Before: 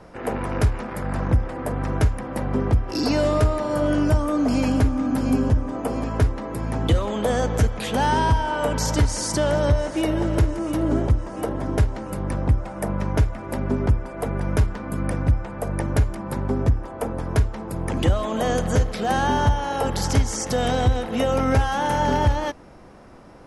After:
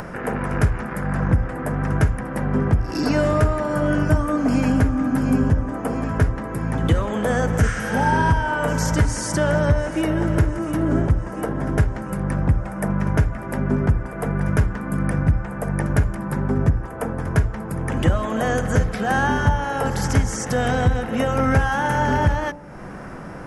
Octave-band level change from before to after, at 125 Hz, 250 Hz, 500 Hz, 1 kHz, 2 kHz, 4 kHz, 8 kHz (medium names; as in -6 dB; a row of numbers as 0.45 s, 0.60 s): +2.0 dB, +2.0 dB, 0.0 dB, +1.0 dB, +6.0 dB, -3.5 dB, -1.0 dB